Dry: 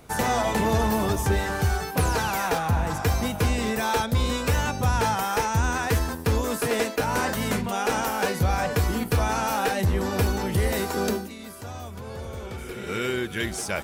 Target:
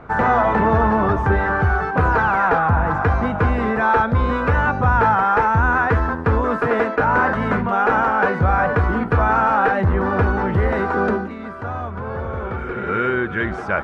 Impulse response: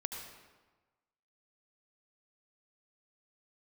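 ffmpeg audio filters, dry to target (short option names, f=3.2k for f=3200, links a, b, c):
-filter_complex "[0:a]asplit=2[a][b];[b]alimiter=level_in=2dB:limit=-24dB:level=0:latency=1,volume=-2dB,volume=-1.5dB[c];[a][c]amix=inputs=2:normalize=0,lowpass=f=1.4k:t=q:w=2.3,volume=3dB"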